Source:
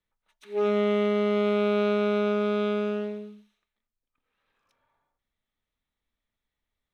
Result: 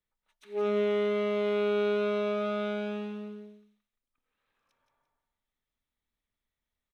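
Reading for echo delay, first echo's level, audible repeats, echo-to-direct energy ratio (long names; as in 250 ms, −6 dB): 172 ms, −6.0 dB, 2, −5.5 dB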